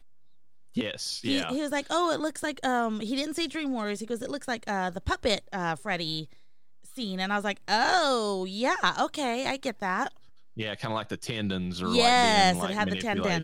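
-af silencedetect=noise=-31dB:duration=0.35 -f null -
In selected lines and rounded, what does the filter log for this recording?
silence_start: 0.00
silence_end: 0.77 | silence_duration: 0.77
silence_start: 6.22
silence_end: 6.98 | silence_duration: 0.75
silence_start: 10.08
silence_end: 10.59 | silence_duration: 0.51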